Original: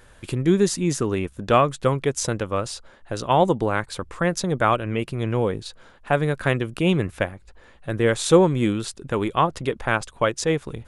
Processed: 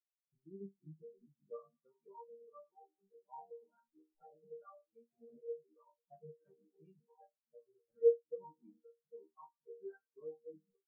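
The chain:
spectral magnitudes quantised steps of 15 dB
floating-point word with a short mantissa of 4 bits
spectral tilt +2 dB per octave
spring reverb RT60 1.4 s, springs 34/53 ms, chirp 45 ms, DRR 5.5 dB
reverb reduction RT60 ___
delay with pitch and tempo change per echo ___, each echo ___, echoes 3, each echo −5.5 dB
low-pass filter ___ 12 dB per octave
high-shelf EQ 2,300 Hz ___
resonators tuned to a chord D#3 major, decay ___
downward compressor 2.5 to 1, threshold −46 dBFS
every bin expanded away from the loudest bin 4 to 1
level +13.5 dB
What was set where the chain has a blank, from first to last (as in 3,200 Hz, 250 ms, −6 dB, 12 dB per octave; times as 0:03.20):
0.72 s, 271 ms, −3 semitones, 3,000 Hz, −7 dB, 0.42 s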